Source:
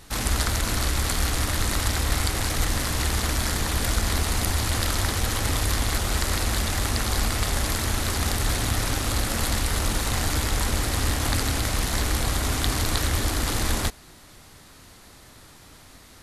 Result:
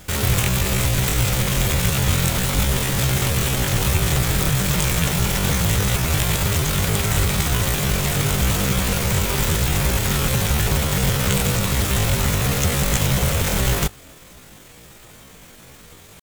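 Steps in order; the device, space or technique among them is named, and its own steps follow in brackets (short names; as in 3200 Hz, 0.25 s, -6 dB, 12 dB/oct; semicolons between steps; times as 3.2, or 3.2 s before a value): chipmunk voice (pitch shift +10 st); gain +5 dB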